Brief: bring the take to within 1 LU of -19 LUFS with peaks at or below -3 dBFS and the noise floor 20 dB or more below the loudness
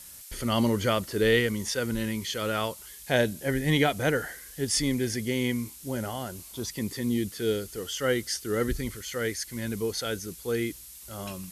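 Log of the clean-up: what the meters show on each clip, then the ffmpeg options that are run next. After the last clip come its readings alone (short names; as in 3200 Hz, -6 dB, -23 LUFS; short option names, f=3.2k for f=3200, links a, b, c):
noise floor -46 dBFS; noise floor target -49 dBFS; loudness -28.5 LUFS; peak -9.5 dBFS; loudness target -19.0 LUFS
-> -af "afftdn=nr=6:nf=-46"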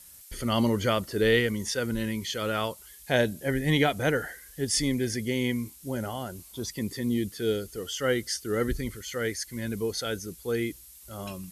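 noise floor -50 dBFS; loudness -29.0 LUFS; peak -9.5 dBFS; loudness target -19.0 LUFS
-> -af "volume=10dB,alimiter=limit=-3dB:level=0:latency=1"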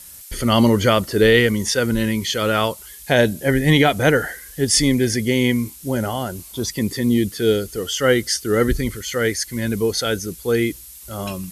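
loudness -19.0 LUFS; peak -3.0 dBFS; noise floor -40 dBFS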